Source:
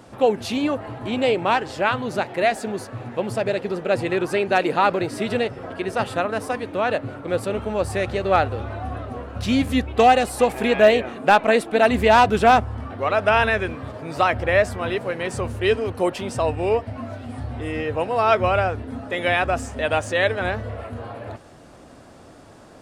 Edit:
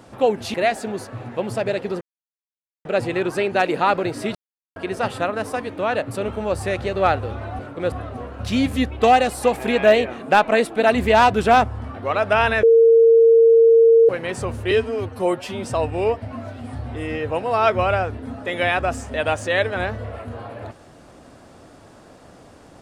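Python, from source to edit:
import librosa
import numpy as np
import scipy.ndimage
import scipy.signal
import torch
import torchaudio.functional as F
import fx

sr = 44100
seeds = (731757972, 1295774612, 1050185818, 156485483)

y = fx.edit(x, sr, fx.cut(start_s=0.54, length_s=1.8),
    fx.insert_silence(at_s=3.81, length_s=0.84),
    fx.silence(start_s=5.31, length_s=0.41),
    fx.move(start_s=7.07, length_s=0.33, to_s=8.88),
    fx.bleep(start_s=13.59, length_s=1.46, hz=457.0, db=-8.5),
    fx.stretch_span(start_s=15.67, length_s=0.62, factor=1.5), tone=tone)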